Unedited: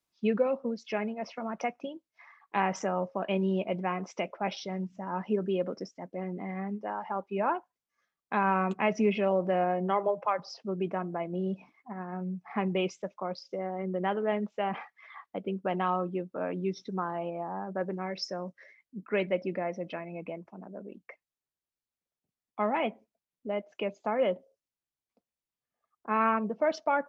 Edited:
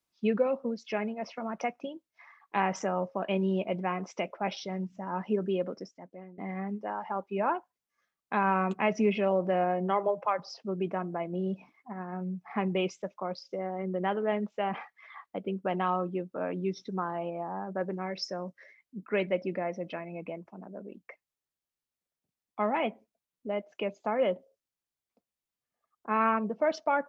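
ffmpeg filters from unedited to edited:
-filter_complex "[0:a]asplit=2[s0][s1];[s0]atrim=end=6.38,asetpts=PTS-STARTPTS,afade=t=out:st=5.53:d=0.85:silence=0.133352[s2];[s1]atrim=start=6.38,asetpts=PTS-STARTPTS,afade=t=in:d=0.004:c=hsin:silence=0.133352[s3];[s2][s3]concat=n=2:v=0:a=1"

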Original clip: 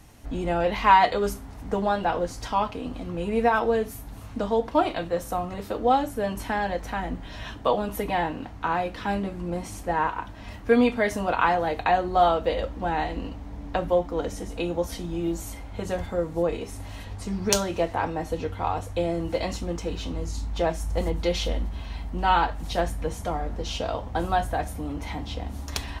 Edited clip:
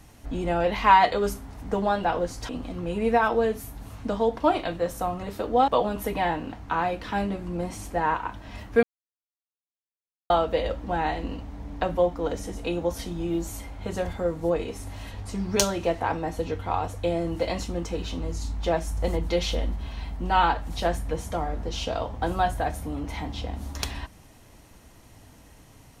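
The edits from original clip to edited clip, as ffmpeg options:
-filter_complex "[0:a]asplit=5[s0][s1][s2][s3][s4];[s0]atrim=end=2.492[s5];[s1]atrim=start=2.798:end=5.992[s6];[s2]atrim=start=7.608:end=10.76,asetpts=PTS-STARTPTS,afade=t=out:st=3.148:d=0.004:c=hsin[s7];[s3]atrim=start=10.76:end=12.23,asetpts=PTS-STARTPTS,volume=0[s8];[s4]atrim=start=12.23,asetpts=PTS-STARTPTS,afade=t=in:d=0.004:c=hsin[s9];[s5][s6]acrossfade=d=0.004:c1=hsin:c2=hsin[s10];[s7][s8][s9]concat=n=3:v=0:a=1[s11];[s10][s11]acrossfade=d=0.004:c1=hsin:c2=hsin"

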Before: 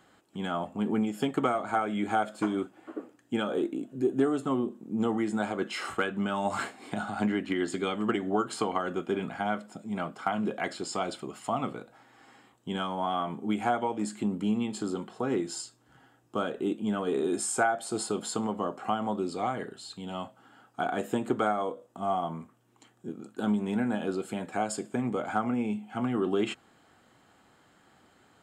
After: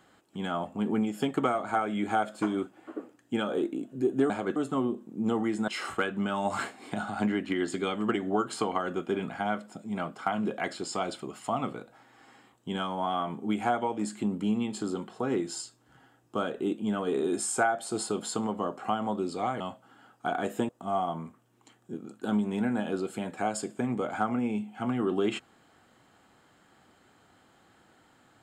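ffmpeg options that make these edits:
-filter_complex "[0:a]asplit=6[s0][s1][s2][s3][s4][s5];[s0]atrim=end=4.302[s6];[s1]atrim=start=5.418:end=5.682[s7];[s2]atrim=start=4.298:end=5.422[s8];[s3]atrim=start=5.678:end=19.602[s9];[s4]atrim=start=20.138:end=21.232[s10];[s5]atrim=start=21.838[s11];[s6][s7]acrossfade=d=0.004:c1=hsin:c2=hsin[s12];[s12][s8]acrossfade=d=0.004:c1=hsin:c2=hsin[s13];[s13][s9]acrossfade=d=0.004:c1=hsin:c2=hsin[s14];[s14][s10]acrossfade=d=0.004:c1=hsin:c2=hsin[s15];[s15][s11]acrossfade=d=0.004:c1=hsin:c2=hsin"

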